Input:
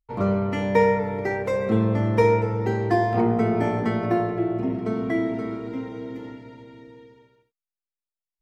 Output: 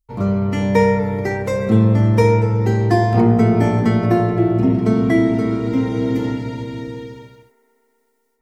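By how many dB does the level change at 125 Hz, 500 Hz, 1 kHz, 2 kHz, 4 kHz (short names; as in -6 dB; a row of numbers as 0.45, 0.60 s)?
+10.5, +4.0, +3.5, +4.0, +8.0 dB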